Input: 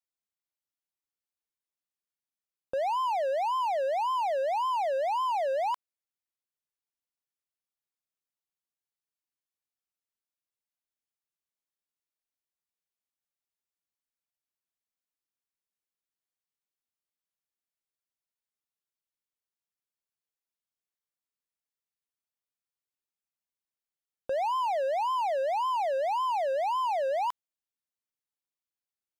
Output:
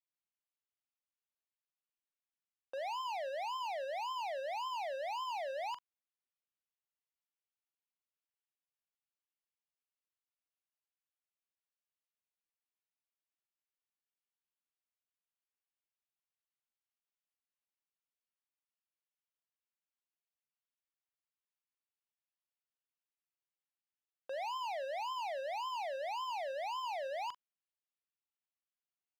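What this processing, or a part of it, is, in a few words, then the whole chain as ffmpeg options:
megaphone: -filter_complex "[0:a]highpass=580,lowpass=3.4k,equalizer=f=2.8k:t=o:w=0.32:g=5,asoftclip=type=hard:threshold=-33dB,asplit=2[a][b];[b]adelay=42,volume=-13dB[c];[a][c]amix=inputs=2:normalize=0,volume=-5.5dB"

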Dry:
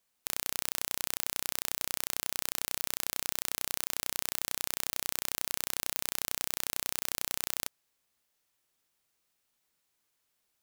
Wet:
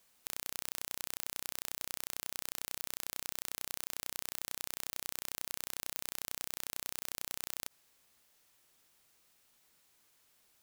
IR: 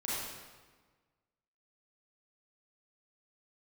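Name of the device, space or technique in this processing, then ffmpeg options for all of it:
de-esser from a sidechain: -filter_complex "[0:a]asplit=2[a][b];[b]highpass=f=4.9k:w=0.5412,highpass=f=4.9k:w=1.3066,apad=whole_len=468580[c];[a][c]sidechaincompress=threshold=-50dB:ratio=3:attack=2.8:release=29,volume=8.5dB"

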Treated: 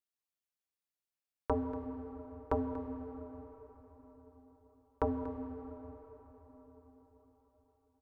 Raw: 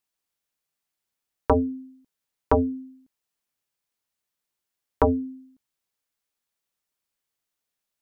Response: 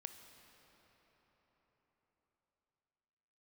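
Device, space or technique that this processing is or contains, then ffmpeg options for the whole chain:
cave: -filter_complex "[0:a]aecho=1:1:238:0.2[a];[1:a]atrim=start_sample=2205[b];[a][b]afir=irnorm=-1:irlink=0,volume=-7dB"

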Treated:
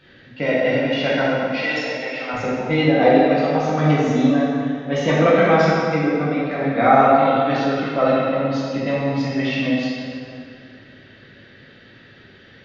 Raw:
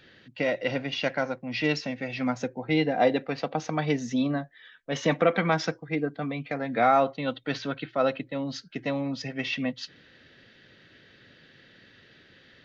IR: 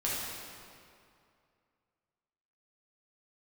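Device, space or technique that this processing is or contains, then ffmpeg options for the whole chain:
swimming-pool hall: -filter_complex "[0:a]asettb=1/sr,asplit=3[a][b][c];[a]atrim=end=1.474[d];[b]atrim=start=1.47:end=2.34,asetpts=PTS-STARTPTS,afade=t=in:d=0.004:c=qsin,afade=t=out:st=0.866:d=0.004:c=qsin,highpass=600[e];[c]atrim=start=2.336[f];[d][e]acrossfade=d=0.004:c1=hsin:c2=qsin[g];[g][f]acrossfade=d=0.004:c1=qsin:c2=hsin[h];[1:a]atrim=start_sample=2205[i];[h][i]afir=irnorm=-1:irlink=0,highshelf=f=3.7k:g=-8,volume=3dB"

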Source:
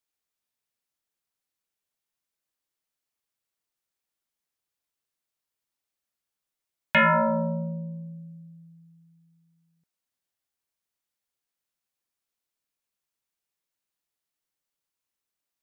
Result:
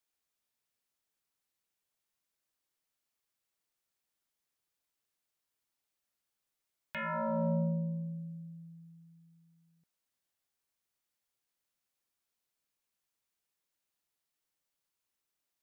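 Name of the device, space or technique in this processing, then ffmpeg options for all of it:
de-esser from a sidechain: -filter_complex "[0:a]asplit=2[a][b];[b]highpass=f=4k:p=1,apad=whole_len=689274[c];[a][c]sidechaincompress=threshold=-46dB:ratio=5:attack=1.2:release=33"

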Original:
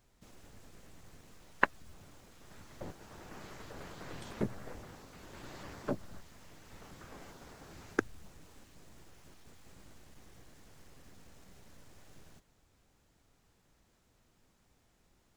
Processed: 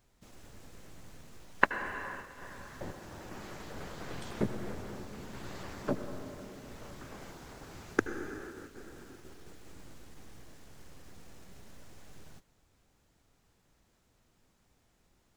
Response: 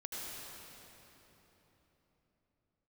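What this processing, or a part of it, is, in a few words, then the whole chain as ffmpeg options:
keyed gated reverb: -filter_complex "[0:a]asplit=3[a][b][c];[1:a]atrim=start_sample=2205[d];[b][d]afir=irnorm=-1:irlink=0[e];[c]apad=whole_len=677519[f];[e][f]sidechaingate=range=-33dB:threshold=-56dB:ratio=16:detection=peak,volume=-3dB[g];[a][g]amix=inputs=2:normalize=0"

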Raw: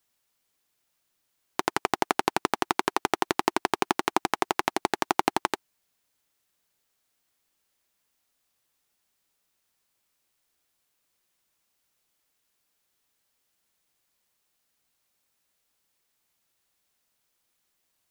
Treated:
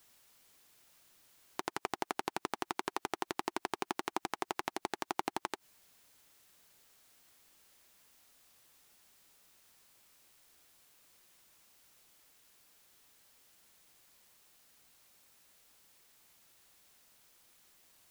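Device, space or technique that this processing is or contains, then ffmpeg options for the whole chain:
de-esser from a sidechain: -filter_complex "[0:a]asplit=2[a][b];[b]highpass=4.6k,apad=whole_len=798472[c];[a][c]sidechaincompress=threshold=-47dB:ratio=6:attack=1.1:release=63,volume=10.5dB"

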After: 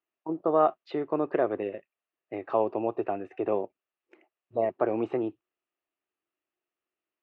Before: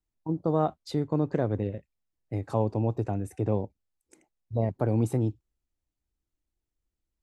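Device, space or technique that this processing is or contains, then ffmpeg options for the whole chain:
phone earpiece: -af "highpass=370,equalizer=f=370:t=q:w=4:g=8,equalizer=f=660:t=q:w=4:g=7,equalizer=f=1.2k:t=q:w=4:g=9,equalizer=f=1.8k:t=q:w=4:g=5,equalizer=f=2.7k:t=q:w=4:g=9,lowpass=f=3.2k:w=0.5412,lowpass=f=3.2k:w=1.3066"

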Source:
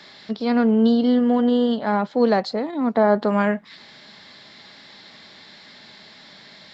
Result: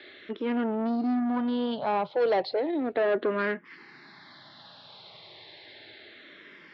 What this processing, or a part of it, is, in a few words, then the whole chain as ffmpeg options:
barber-pole phaser into a guitar amplifier: -filter_complex "[0:a]asplit=2[a][b];[b]afreqshift=-0.33[c];[a][c]amix=inputs=2:normalize=1,asoftclip=type=tanh:threshold=-20.5dB,highpass=95,equalizer=f=110:t=q:w=4:g=4,equalizer=f=210:t=q:w=4:g=-10,equalizer=f=350:t=q:w=4:g=7,lowpass=f=4k:w=0.5412,lowpass=f=4k:w=1.3066"

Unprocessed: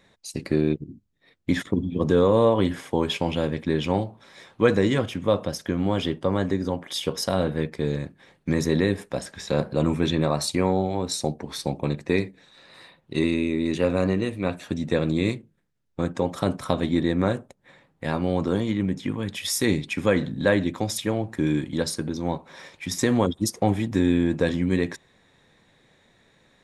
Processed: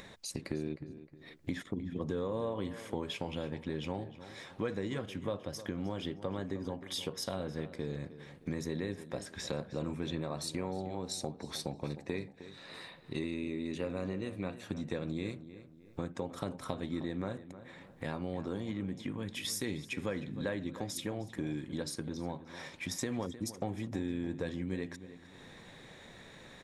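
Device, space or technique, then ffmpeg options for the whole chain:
upward and downward compression: -filter_complex "[0:a]acompressor=mode=upward:threshold=-39dB:ratio=2.5,acompressor=threshold=-34dB:ratio=3,asplit=2[a][b];[b]adelay=310,lowpass=f=3k:p=1,volume=-13.5dB,asplit=2[c][d];[d]adelay=310,lowpass=f=3k:p=1,volume=0.39,asplit=2[e][f];[f]adelay=310,lowpass=f=3k:p=1,volume=0.39,asplit=2[g][h];[h]adelay=310,lowpass=f=3k:p=1,volume=0.39[i];[a][c][e][g][i]amix=inputs=5:normalize=0,volume=-3dB"

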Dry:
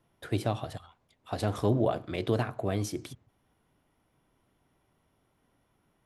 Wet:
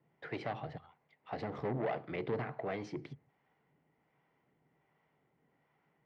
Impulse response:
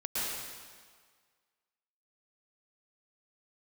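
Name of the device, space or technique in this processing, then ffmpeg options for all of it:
guitar amplifier with harmonic tremolo: -filter_complex "[0:a]acrossover=split=530[a][b];[a]aeval=exprs='val(0)*(1-0.5/2+0.5/2*cos(2*PI*1.3*n/s))':c=same[c];[b]aeval=exprs='val(0)*(1-0.5/2-0.5/2*cos(2*PI*1.3*n/s))':c=same[d];[c][d]amix=inputs=2:normalize=0,asoftclip=type=tanh:threshold=-29.5dB,highpass=100,equalizer=f=100:t=q:w=4:g=-9,equalizer=f=150:t=q:w=4:g=9,equalizer=f=450:t=q:w=4:g=6,equalizer=f=820:t=q:w=4:g=6,equalizer=f=2k:t=q:w=4:g=10,equalizer=f=3.6k:t=q:w=4:g=-7,lowpass=f=4.2k:w=0.5412,lowpass=f=4.2k:w=1.3066,volume=-3.5dB"

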